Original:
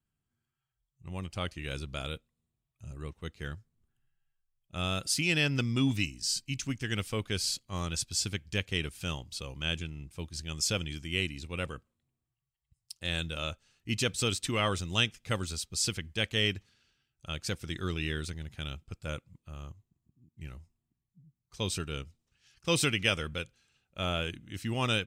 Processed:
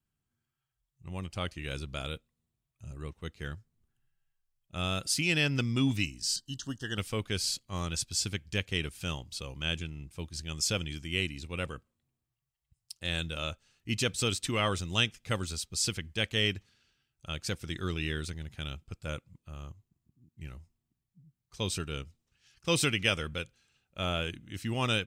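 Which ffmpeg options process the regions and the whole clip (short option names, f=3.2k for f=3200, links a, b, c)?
-filter_complex "[0:a]asettb=1/sr,asplit=3[a][b][c];[a]atrim=end=6.364[d];[b]atrim=start=6.36:end=6.98,asetpts=PTS-STARTPTS,afade=t=in:d=0.004:c=qsin,afade=t=out:st=0.616:d=0.004:c=qsin,lowshelf=f=240:g=-6.5,acrossover=split=6100[e][f];[f]acompressor=threshold=-52dB:ratio=4:attack=1:release=60[g];[e][g]amix=inputs=2:normalize=0,asuperstop=centerf=2300:order=12:qfactor=2.4[h];[c]atrim=start=6.976[i];[d][h]acrossfade=d=0.004:c1=hsin:c2=qsin[j];[j][i]acrossfade=d=0.004:c1=qsin:c2=hsin"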